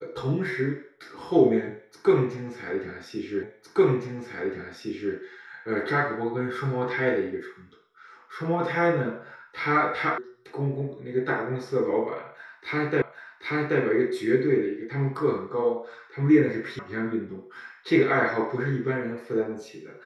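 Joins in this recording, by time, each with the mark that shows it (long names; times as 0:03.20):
0:03.43: the same again, the last 1.71 s
0:10.18: cut off before it has died away
0:13.02: the same again, the last 0.78 s
0:16.79: cut off before it has died away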